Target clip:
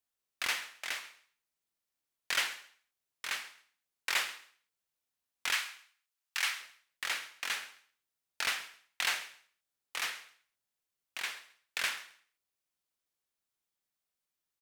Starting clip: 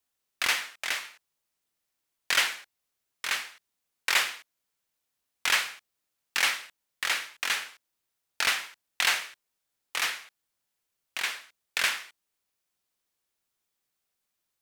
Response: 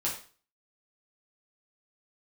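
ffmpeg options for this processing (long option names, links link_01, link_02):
-filter_complex "[0:a]asplit=3[link_01][link_02][link_03];[link_01]afade=type=out:start_time=5.52:duration=0.02[link_04];[link_02]highpass=940,afade=type=in:start_time=5.52:duration=0.02,afade=type=out:start_time=6.59:duration=0.02[link_05];[link_03]afade=type=in:start_time=6.59:duration=0.02[link_06];[link_04][link_05][link_06]amix=inputs=3:normalize=0,aecho=1:1:134|268:0.0944|0.0274,volume=-7dB"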